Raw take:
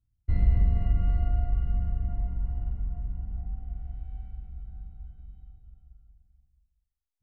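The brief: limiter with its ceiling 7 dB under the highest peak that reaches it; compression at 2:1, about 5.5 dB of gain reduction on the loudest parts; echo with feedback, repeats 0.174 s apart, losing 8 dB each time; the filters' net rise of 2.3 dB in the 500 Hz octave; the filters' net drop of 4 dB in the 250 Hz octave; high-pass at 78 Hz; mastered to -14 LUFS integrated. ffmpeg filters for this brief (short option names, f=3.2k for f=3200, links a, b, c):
-af "highpass=78,equalizer=f=250:t=o:g=-7.5,equalizer=f=500:t=o:g=5.5,acompressor=threshold=-34dB:ratio=2,alimiter=level_in=7.5dB:limit=-24dB:level=0:latency=1,volume=-7.5dB,aecho=1:1:174|348|522|696|870:0.398|0.159|0.0637|0.0255|0.0102,volume=27.5dB"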